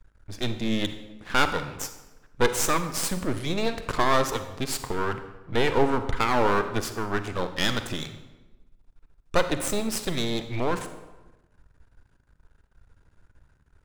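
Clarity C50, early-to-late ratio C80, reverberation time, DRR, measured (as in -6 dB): 10.0 dB, 12.0 dB, 1.1 s, 9.0 dB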